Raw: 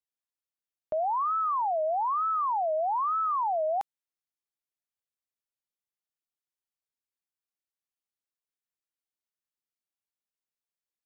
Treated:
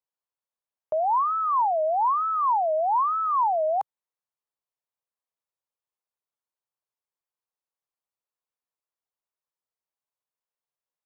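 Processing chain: ten-band EQ 125 Hz +6 dB, 250 Hz -5 dB, 500 Hz +9 dB, 1000 Hz +11 dB; gain -6 dB

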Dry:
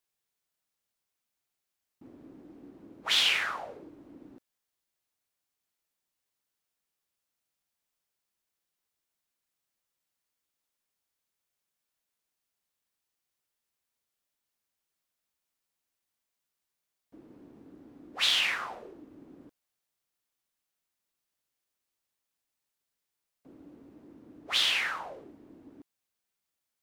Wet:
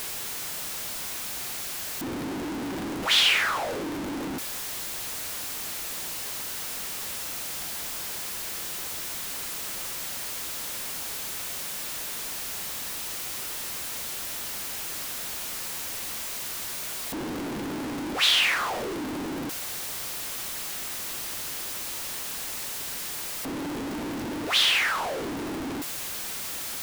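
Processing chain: zero-crossing step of -30 dBFS; gain +3 dB

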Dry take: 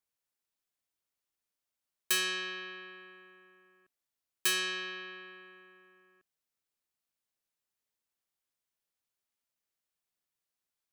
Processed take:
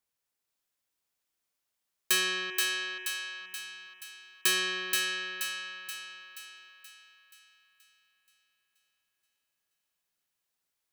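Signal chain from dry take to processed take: 2.5–3.41 fixed phaser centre 890 Hz, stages 8; thinning echo 0.478 s, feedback 52%, high-pass 590 Hz, level -3 dB; gain +3 dB

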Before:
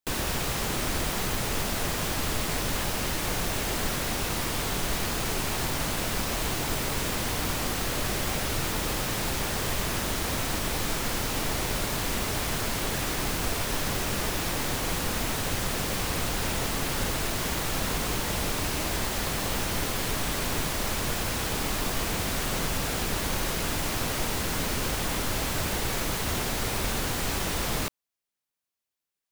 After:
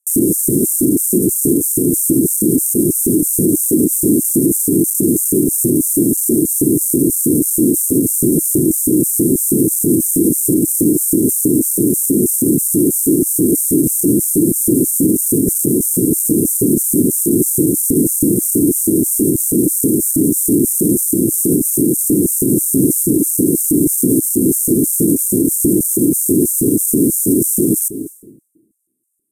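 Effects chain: half-waves squared off; graphic EQ 125/250/1000/2000/4000 Hz +7/+4/-3/+4/+4 dB; reverb RT60 1.0 s, pre-delay 0.179 s, DRR 16 dB; LFO high-pass square 3.1 Hz 410–6200 Hz; Chebyshev band-stop 320–8900 Hz, order 4; careless resampling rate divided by 2×, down filtered, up hold; maximiser +25 dB; gain -3 dB

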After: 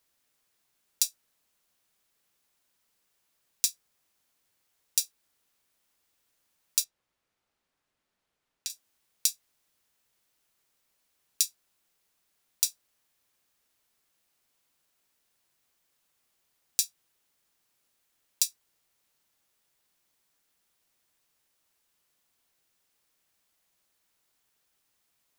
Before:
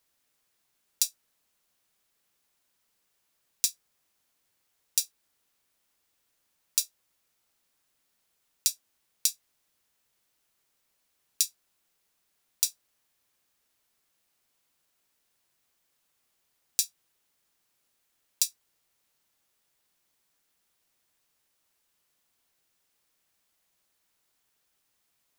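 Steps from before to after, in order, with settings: 6.84–8.7 LPF 2100 Hz 6 dB/oct

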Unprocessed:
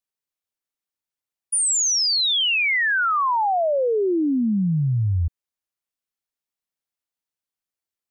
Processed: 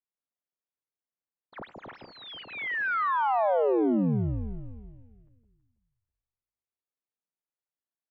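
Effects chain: median filter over 15 samples; mistuned SSB -210 Hz 340–3100 Hz; echo with dull and thin repeats by turns 0.163 s, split 910 Hz, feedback 54%, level -3 dB; gain -5 dB

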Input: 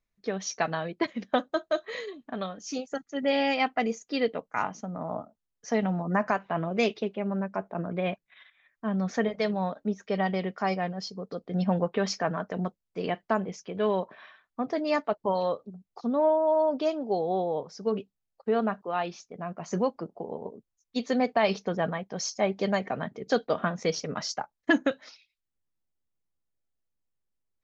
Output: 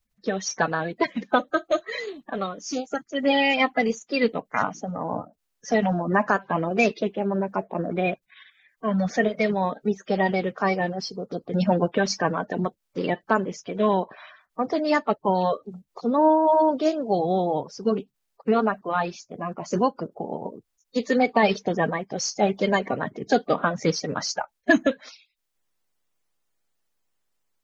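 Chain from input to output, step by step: bin magnitudes rounded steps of 30 dB; gain +5.5 dB

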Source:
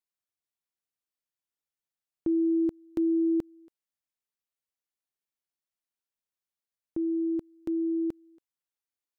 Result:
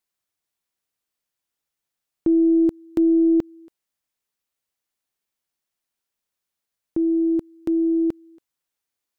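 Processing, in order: tracing distortion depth 0.11 ms; gain +8.5 dB

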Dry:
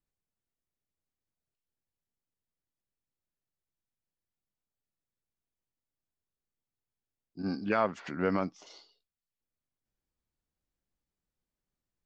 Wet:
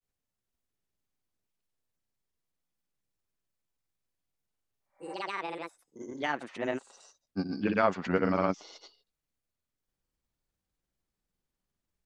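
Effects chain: echoes that change speed 0.451 s, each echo +5 st, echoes 2, each echo -6 dB; grains, spray 0.1 s, pitch spread up and down by 0 st; spectral repair 4.81–5.12, 530–2400 Hz both; gain +4 dB

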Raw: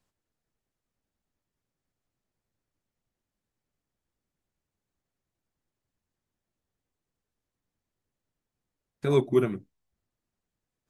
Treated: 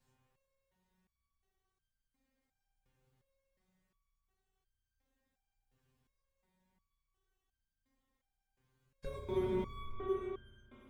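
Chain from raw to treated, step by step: octaver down 2 oct, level -3 dB; notch comb 330 Hz; on a send: thinning echo 0.361 s, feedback 40%, high-pass 180 Hz, level -10 dB; on the sum: spring tank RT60 2.3 s, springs 33/54 ms, chirp 45 ms, DRR -4.5 dB; in parallel at -10.5 dB: Schmitt trigger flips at -23.5 dBFS; on the sum: low shelf 63 Hz +10 dB; compressor 10:1, threshold -31 dBFS, peak gain reduction 17.5 dB; stepped resonator 2.8 Hz 130–1600 Hz; gain +13.5 dB

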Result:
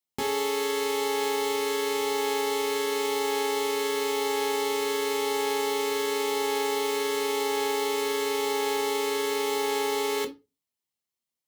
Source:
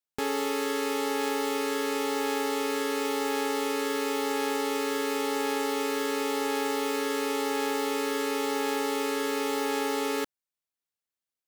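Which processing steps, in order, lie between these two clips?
HPF 50 Hz; bell 1500 Hz -7 dB 0.79 oct; reverb RT60 0.25 s, pre-delay 5 ms, DRR 3.5 dB; gain +1.5 dB

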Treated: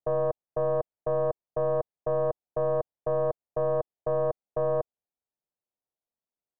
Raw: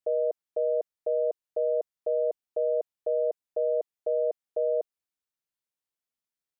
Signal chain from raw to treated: one-sided fold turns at -27.5 dBFS; synth low-pass 720 Hz, resonance Q 1.6

